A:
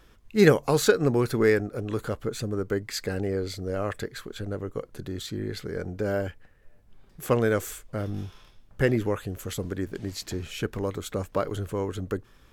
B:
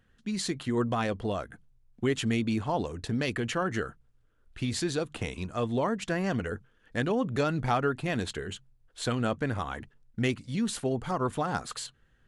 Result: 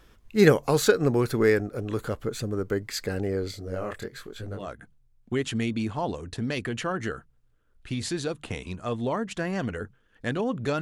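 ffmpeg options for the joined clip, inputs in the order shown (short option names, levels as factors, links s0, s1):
-filter_complex "[0:a]asettb=1/sr,asplit=3[s0][s1][s2];[s0]atrim=end=3.514[s3];[s1]atrim=start=3.51:end=4.72,asetpts=PTS-STARTPTS,afade=t=in:d=0.004:c=qsin,afade=t=out:st=1.206:d=0.004:c=qsin,flanger=delay=17.5:depth=7.6:speed=1.1[s4];[s2]atrim=start=4.716[s5];[s3][s4]acrossfade=d=0.004:c1=hsin:c2=qsin[s6];[s6][s5]acrossfade=d=0.004:c1=qsin:c2=hsin,apad=whole_dur=10.81,atrim=end=10.81,atrim=end=4.72,asetpts=PTS-STARTPTS[s7];[1:a]atrim=start=1.25:end=7.52,asetpts=PTS-STARTPTS[s8];[s7][s8]acrossfade=d=0.18:c1=tri:c2=tri"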